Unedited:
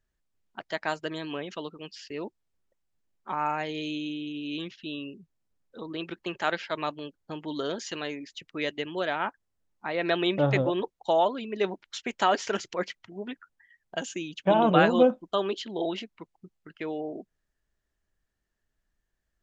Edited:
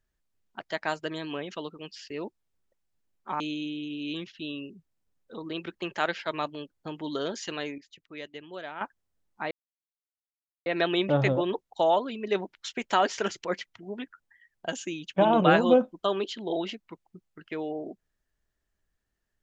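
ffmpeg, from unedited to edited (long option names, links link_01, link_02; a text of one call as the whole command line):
ffmpeg -i in.wav -filter_complex "[0:a]asplit=5[link_01][link_02][link_03][link_04][link_05];[link_01]atrim=end=3.402[link_06];[link_02]atrim=start=3.838:end=8.222[link_07];[link_03]atrim=start=8.218:end=9.252,asetpts=PTS-STARTPTS,volume=-10dB[link_08];[link_04]atrim=start=9.248:end=9.95,asetpts=PTS-STARTPTS,afade=type=out:start_time=0.698:duration=0.004:curve=hsin,apad=pad_dur=1.15[link_09];[link_05]atrim=start=9.95,asetpts=PTS-STARTPTS,afade=type=in:duration=0.004:curve=hsin[link_10];[link_06][link_07]acrossfade=duration=0.004:curve1=hsin:curve2=hsin[link_11];[link_11][link_08]acrossfade=duration=0.004:curve1=hsin:curve2=hsin[link_12];[link_09][link_10]concat=n=2:v=0:a=1[link_13];[link_12][link_13]acrossfade=duration=0.004:curve1=hsin:curve2=hsin" out.wav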